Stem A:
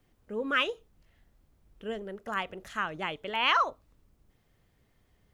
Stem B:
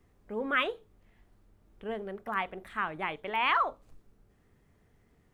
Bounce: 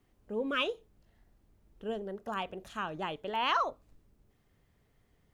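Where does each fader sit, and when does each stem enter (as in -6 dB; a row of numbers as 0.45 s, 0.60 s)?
-4.0 dB, -8.0 dB; 0.00 s, 0.00 s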